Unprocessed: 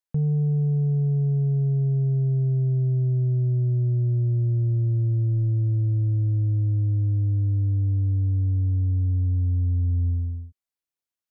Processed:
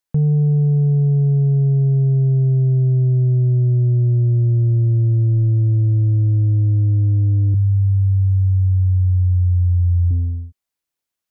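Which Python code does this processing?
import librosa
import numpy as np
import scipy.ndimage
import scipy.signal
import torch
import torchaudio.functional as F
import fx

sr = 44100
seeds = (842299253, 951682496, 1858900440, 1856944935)

y = fx.curve_eq(x, sr, hz=(160.0, 240.0, 370.0, 660.0, 1500.0), db=(0, -22, -28, -2, 4), at=(7.54, 10.11))
y = y * librosa.db_to_amplitude(7.0)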